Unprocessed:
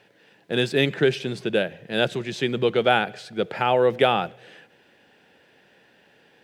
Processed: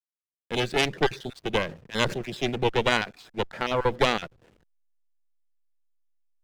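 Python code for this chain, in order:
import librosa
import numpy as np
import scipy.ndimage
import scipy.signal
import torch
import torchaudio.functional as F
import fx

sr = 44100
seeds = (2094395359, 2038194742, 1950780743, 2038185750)

y = fx.spec_dropout(x, sr, seeds[0], share_pct=24)
y = fx.peak_eq(y, sr, hz=820.0, db=-8.0, octaves=0.57)
y = fx.cheby_harmonics(y, sr, harmonics=(4,), levels_db=(-7,), full_scale_db=-5.5)
y = fx.backlash(y, sr, play_db=-39.0)
y = fx.sustainer(y, sr, db_per_s=140.0, at=(1.6, 2.54))
y = F.gain(torch.from_numpy(y), -4.0).numpy()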